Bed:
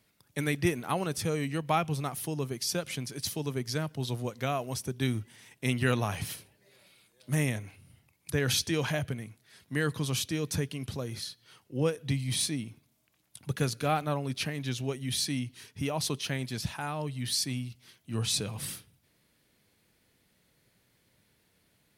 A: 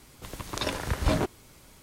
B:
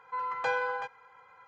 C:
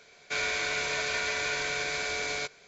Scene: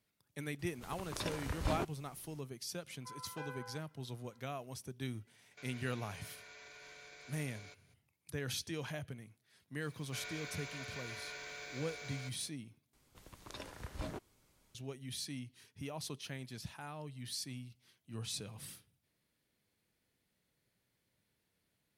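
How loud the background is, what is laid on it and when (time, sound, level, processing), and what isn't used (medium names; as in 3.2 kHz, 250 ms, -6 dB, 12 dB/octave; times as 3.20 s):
bed -12 dB
0.59 s: add A -10.5 dB
2.93 s: add B -17.5 dB
5.27 s: add C -17 dB + peak limiter -29.5 dBFS
9.82 s: add C -17 dB + jump at every zero crossing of -44.5 dBFS
12.93 s: replace with A -17.5 dB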